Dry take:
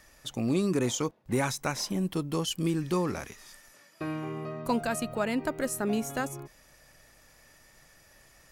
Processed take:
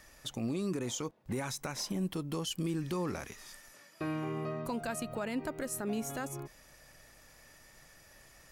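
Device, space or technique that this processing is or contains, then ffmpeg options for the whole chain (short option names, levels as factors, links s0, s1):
stacked limiters: -af "alimiter=limit=0.1:level=0:latency=1:release=223,alimiter=level_in=1.33:limit=0.0631:level=0:latency=1:release=164,volume=0.75"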